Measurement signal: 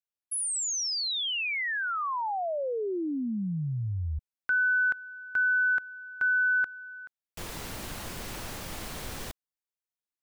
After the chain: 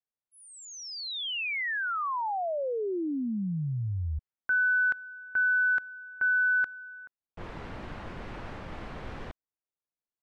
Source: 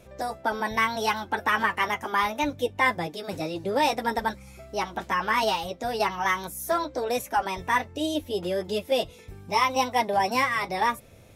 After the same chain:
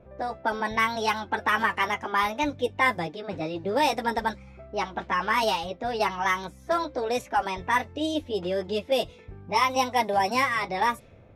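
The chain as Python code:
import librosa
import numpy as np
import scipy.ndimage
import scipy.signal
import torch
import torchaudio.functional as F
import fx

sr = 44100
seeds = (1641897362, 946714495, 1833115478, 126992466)

y = fx.env_lowpass(x, sr, base_hz=1200.0, full_db=-20.0)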